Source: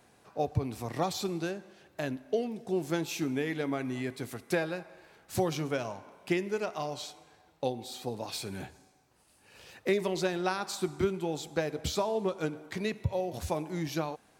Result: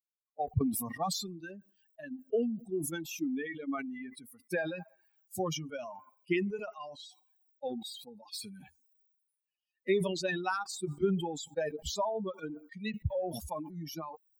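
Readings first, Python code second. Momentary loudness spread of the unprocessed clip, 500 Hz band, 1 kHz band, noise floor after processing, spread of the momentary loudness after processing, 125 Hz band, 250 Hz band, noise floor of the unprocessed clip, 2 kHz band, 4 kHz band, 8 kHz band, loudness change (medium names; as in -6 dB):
10 LU, -3.5 dB, -2.5 dB, under -85 dBFS, 15 LU, -3.5 dB, -2.0 dB, -64 dBFS, -2.0 dB, -2.0 dB, 0.0 dB, -2.0 dB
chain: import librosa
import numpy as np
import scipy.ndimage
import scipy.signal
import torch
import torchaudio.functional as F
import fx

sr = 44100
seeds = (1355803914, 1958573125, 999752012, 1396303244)

y = fx.bin_expand(x, sr, power=3.0)
y = fx.sustainer(y, sr, db_per_s=47.0)
y = F.gain(torch.from_numpy(y), 2.0).numpy()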